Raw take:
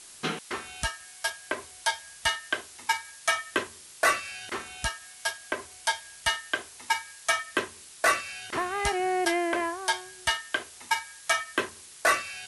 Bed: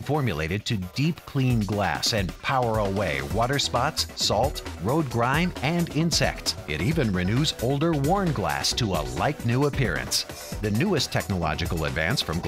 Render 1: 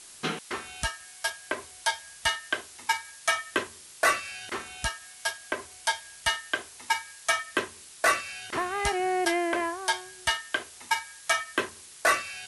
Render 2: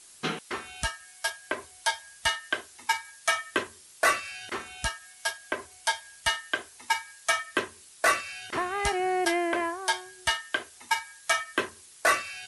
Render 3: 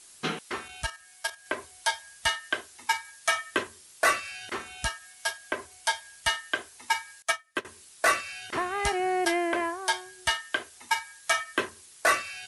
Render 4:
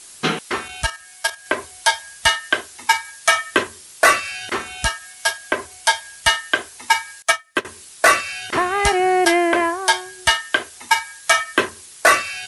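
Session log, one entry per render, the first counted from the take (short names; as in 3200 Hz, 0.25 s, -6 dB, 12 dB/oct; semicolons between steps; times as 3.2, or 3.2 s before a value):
nothing audible
denoiser 6 dB, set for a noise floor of -49 dBFS
0.68–1.46 level quantiser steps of 9 dB; 7.22–7.65 upward expander 2.5:1, over -36 dBFS
gain +10.5 dB; limiter -2 dBFS, peak gain reduction 1.5 dB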